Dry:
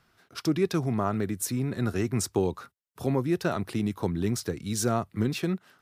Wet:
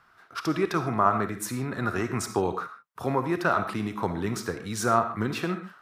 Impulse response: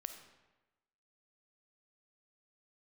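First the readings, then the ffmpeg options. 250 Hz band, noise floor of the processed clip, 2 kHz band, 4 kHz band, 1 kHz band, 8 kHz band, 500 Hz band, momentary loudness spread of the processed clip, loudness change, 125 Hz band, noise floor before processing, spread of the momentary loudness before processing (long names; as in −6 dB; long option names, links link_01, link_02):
−2.0 dB, −60 dBFS, +7.0 dB, −1.0 dB, +9.0 dB, −2.5 dB, +1.0 dB, 9 LU, +1.0 dB, −3.0 dB, −69 dBFS, 5 LU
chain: -filter_complex "[0:a]equalizer=frequency=1200:width=0.81:gain=14.5[link_01];[1:a]atrim=start_sample=2205,afade=type=out:start_time=0.21:duration=0.01,atrim=end_sample=9702[link_02];[link_01][link_02]afir=irnorm=-1:irlink=0"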